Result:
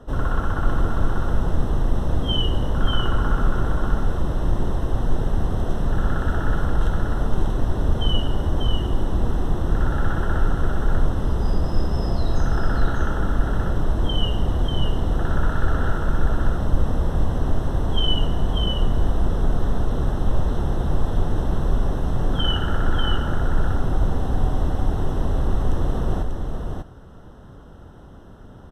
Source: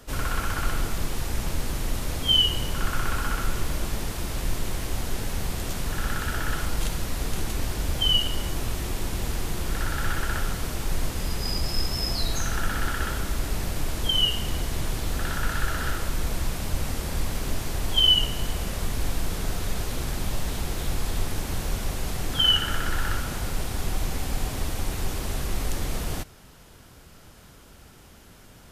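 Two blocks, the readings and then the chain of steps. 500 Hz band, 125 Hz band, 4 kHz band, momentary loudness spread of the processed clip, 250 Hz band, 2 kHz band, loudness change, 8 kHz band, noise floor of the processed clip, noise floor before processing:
+7.0 dB, +8.0 dB, −6.5 dB, 2 LU, +7.5 dB, −1.5 dB, +3.0 dB, −14.5 dB, −42 dBFS, −50 dBFS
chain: moving average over 19 samples
on a send: single-tap delay 591 ms −4.5 dB
on the sum: level +6.5 dB

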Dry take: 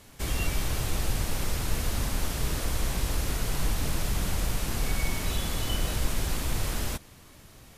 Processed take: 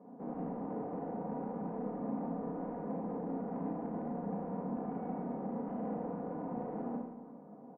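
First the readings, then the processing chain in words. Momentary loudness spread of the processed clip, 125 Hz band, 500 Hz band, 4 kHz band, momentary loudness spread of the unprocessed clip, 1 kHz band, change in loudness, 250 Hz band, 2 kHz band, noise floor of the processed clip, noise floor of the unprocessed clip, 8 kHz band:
2 LU, −14.5 dB, −1.0 dB, below −40 dB, 1 LU, −3.0 dB, −8.5 dB, +0.5 dB, −24.5 dB, −52 dBFS, −52 dBFS, below −40 dB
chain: elliptic band-pass filter 170–860 Hz, stop band 60 dB
comb filter 4.1 ms, depth 68%
in parallel at +2 dB: downward compressor, threshold −50 dBFS, peak gain reduction 17 dB
on the sum: soft clipping −28 dBFS, distortion −20 dB
four-comb reverb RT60 1.1 s, combs from 26 ms, DRR −0.5 dB
level −5 dB
MP3 64 kbit/s 8,000 Hz

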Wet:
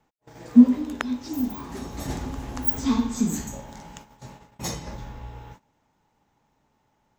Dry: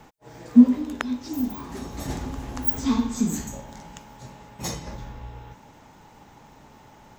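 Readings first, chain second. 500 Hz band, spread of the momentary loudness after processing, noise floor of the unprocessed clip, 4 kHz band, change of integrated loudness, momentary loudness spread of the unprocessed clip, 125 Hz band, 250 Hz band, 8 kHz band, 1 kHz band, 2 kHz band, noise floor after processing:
0.0 dB, 23 LU, −52 dBFS, 0.0 dB, 0.0 dB, 24 LU, 0.0 dB, 0.0 dB, 0.0 dB, 0.0 dB, 0.0 dB, −71 dBFS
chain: noise gate −44 dBFS, range −19 dB

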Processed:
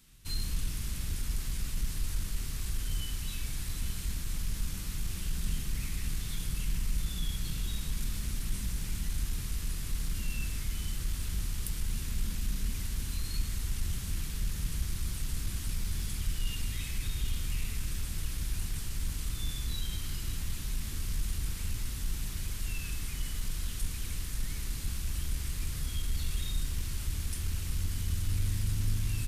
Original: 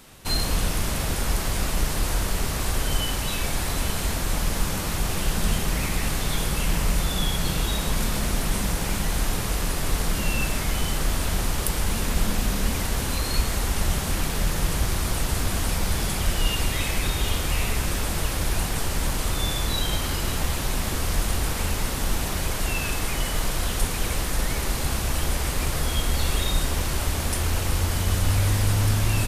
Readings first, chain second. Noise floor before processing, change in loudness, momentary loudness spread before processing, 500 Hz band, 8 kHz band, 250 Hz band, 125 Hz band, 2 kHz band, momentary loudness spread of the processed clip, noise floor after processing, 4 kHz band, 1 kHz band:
−28 dBFS, −11.0 dB, 2 LU, −23.5 dB, −11.5 dB, −14.0 dB, −9.5 dB, −16.0 dB, 2 LU, −38 dBFS, −13.0 dB, −23.0 dB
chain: sub-octave generator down 2 octaves, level −1 dB
guitar amp tone stack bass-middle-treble 6-0-2
in parallel at −6.5 dB: gain into a clipping stage and back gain 31 dB

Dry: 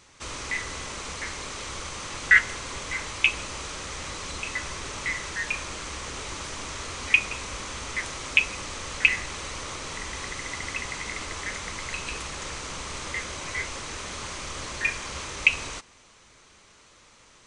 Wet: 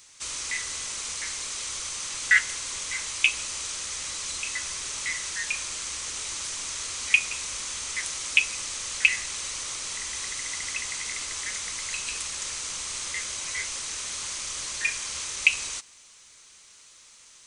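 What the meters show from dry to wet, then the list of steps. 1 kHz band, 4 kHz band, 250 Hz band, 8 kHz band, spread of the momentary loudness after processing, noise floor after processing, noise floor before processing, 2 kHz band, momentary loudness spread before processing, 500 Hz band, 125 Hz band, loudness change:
−6.5 dB, +2.5 dB, −11.0 dB, +7.5 dB, 8 LU, −53 dBFS, −56 dBFS, −1.5 dB, 12 LU, −10.0 dB, −11.5 dB, +0.5 dB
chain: first-order pre-emphasis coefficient 0.9
level +8.5 dB

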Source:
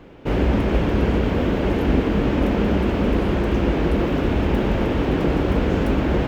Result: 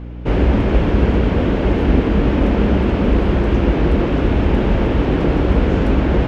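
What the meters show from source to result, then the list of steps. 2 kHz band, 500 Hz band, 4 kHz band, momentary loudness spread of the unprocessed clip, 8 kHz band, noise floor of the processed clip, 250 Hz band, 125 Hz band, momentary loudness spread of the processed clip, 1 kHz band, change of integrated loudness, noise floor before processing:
+2.5 dB, +3.0 dB, +1.5 dB, 1 LU, can't be measured, −19 dBFS, +3.5 dB, +5.5 dB, 1 LU, +3.0 dB, +4.0 dB, −23 dBFS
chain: low-shelf EQ 64 Hz +6 dB
mains hum 60 Hz, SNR 15 dB
high-frequency loss of the air 60 metres
level +3 dB

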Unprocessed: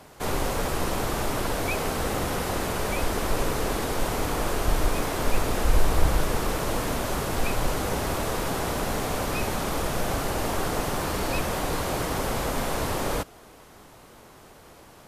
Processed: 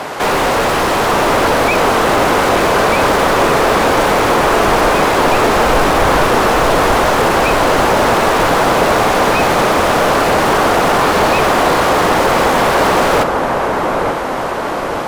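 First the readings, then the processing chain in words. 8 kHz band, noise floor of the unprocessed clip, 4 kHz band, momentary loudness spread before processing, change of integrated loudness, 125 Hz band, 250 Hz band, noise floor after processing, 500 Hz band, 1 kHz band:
+9.5 dB, −50 dBFS, +14.5 dB, 2 LU, +15.5 dB, +8.0 dB, +14.0 dB, −19 dBFS, +17.5 dB, +19.0 dB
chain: mid-hump overdrive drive 35 dB, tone 1,800 Hz, clips at −7.5 dBFS
delay with a low-pass on its return 883 ms, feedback 56%, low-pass 1,500 Hz, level −3 dB
level +3 dB

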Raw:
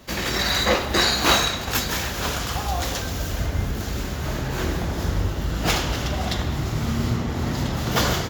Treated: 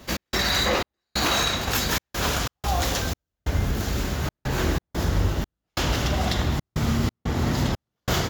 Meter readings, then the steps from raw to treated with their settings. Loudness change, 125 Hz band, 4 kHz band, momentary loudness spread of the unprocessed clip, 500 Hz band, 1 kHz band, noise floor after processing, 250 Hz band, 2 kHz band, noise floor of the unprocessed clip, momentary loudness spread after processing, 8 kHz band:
−2.0 dB, −0.5 dB, −2.5 dB, 8 LU, −2.0 dB, −2.0 dB, −85 dBFS, −1.0 dB, −2.5 dB, −29 dBFS, 7 LU, −2.0 dB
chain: brickwall limiter −14 dBFS, peak gain reduction 10.5 dB
gate pattern "x.xxx..xxxxx.x" 91 BPM −60 dB
level +1.5 dB

